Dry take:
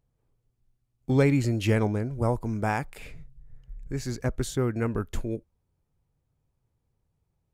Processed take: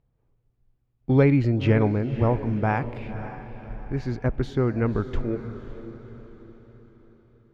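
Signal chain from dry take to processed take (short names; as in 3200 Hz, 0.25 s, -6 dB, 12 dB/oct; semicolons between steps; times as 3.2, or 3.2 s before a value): air absorption 290 m; on a send: diffused feedback echo 0.546 s, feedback 45%, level -12 dB; on the sum: gain +4 dB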